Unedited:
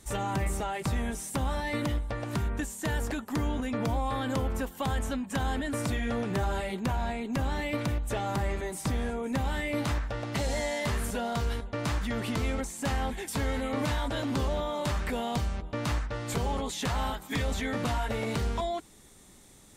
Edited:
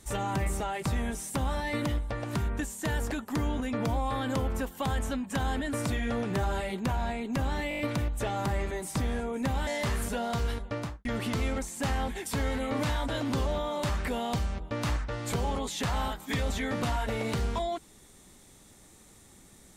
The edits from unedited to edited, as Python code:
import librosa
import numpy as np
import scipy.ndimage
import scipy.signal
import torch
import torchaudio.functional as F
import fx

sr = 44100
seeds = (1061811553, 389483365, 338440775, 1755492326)

y = fx.studio_fade_out(x, sr, start_s=11.72, length_s=0.35)
y = fx.edit(y, sr, fx.stutter(start_s=7.69, slice_s=0.02, count=6),
    fx.cut(start_s=9.57, length_s=1.12), tone=tone)